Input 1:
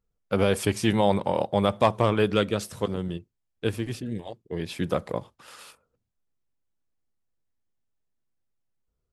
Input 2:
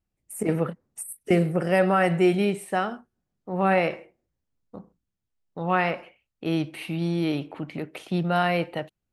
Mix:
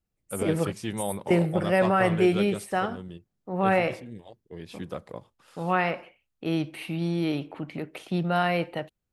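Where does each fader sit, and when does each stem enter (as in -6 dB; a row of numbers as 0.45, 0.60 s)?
-9.5, -1.5 dB; 0.00, 0.00 s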